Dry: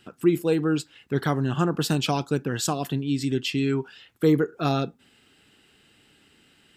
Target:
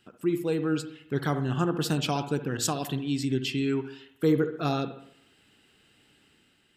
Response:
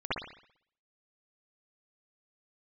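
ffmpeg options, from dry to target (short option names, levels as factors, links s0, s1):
-filter_complex "[0:a]dynaudnorm=f=110:g=9:m=1.58,asplit=2[s0][s1];[1:a]atrim=start_sample=2205,asetrate=40572,aresample=44100[s2];[s1][s2]afir=irnorm=-1:irlink=0,volume=0.126[s3];[s0][s3]amix=inputs=2:normalize=0,asettb=1/sr,asplit=3[s4][s5][s6];[s4]atrim=end=2.574[s7];[s5]atrim=start=2.57:end=3.21,asetpts=PTS-STARTPTS,afade=t=in:d=0.004:c=qsin,afade=t=out:st=0.636:d=0.004:c=qsin,adynamicequalizer=threshold=0.02:dfrequency=1800:dqfactor=0.7:tfrequency=1800:tqfactor=0.7:attack=5:release=100:ratio=0.375:range=2:mode=boostabove:tftype=highshelf[s8];[s6]atrim=start=3.206[s9];[s7][s8]acrossfade=d=0.004:c1=hsin:c2=qsin[s10];[s10][s9]acrossfade=d=0.004:c1=qsin:c2=hsin,volume=0.398"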